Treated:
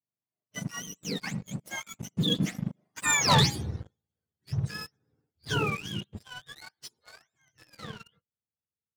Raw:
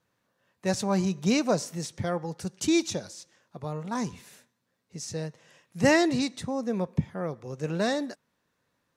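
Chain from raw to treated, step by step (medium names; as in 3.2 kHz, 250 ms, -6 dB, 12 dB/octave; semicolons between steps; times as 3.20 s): spectrum inverted on a logarithmic axis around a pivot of 970 Hz; Doppler pass-by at 3.30 s, 56 m/s, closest 7.6 m; waveshaping leveller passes 3; trim +7 dB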